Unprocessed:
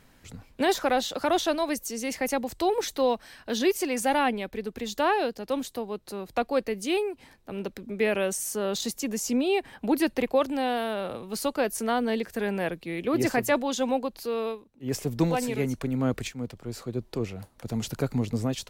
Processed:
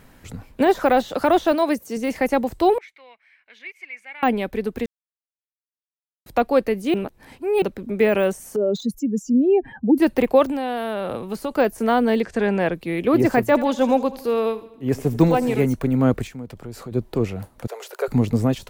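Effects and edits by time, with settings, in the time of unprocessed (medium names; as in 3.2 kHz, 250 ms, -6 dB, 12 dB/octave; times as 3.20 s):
1.52–1.97 s: high-pass 97 Hz
2.78–4.23 s: band-pass filter 2.2 kHz, Q 13
4.86–6.26 s: mute
6.94–7.62 s: reverse
8.56–9.98 s: spectral contrast enhancement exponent 2.3
10.50–11.51 s: compression 8:1, threshold -29 dBFS
12.23–12.75 s: low-pass 7.9 kHz 24 dB/octave
13.47–15.63 s: feedback delay 81 ms, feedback 56%, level -18 dB
16.23–16.92 s: compression 3:1, threshold -40 dBFS
17.67–18.08 s: rippled Chebyshev high-pass 380 Hz, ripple 3 dB
whole clip: de-esser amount 100%; peaking EQ 4.9 kHz -5.5 dB 2 oct; trim +8.5 dB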